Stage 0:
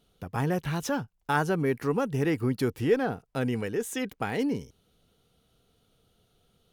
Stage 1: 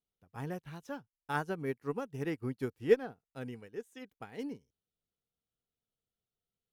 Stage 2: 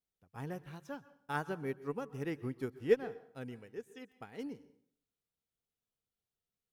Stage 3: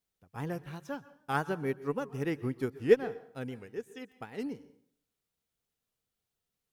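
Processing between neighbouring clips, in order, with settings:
expander for the loud parts 2.5 to 1, over −37 dBFS
dense smooth reverb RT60 0.59 s, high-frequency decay 0.8×, pre-delay 110 ms, DRR 16.5 dB; level −2.5 dB
wow of a warped record 78 rpm, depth 100 cents; level +5.5 dB

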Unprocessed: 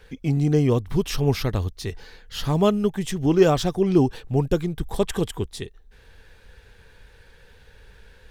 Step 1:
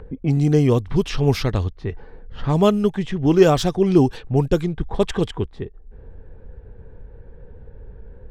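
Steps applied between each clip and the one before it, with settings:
low-pass that shuts in the quiet parts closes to 440 Hz, open at −16.5 dBFS
in parallel at −3 dB: upward compression, threshold −23 dBFS
on the sum: level −1.5 dB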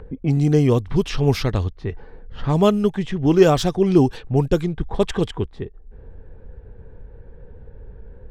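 no processing that can be heard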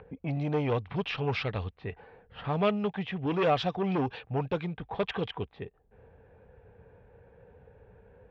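soft clipping −13.5 dBFS, distortion −11 dB
loudspeaker in its box 130–3,700 Hz, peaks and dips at 150 Hz −5 dB, 240 Hz −8 dB, 350 Hz −9 dB, 740 Hz +4 dB, 2,500 Hz +6 dB
level −4.5 dB

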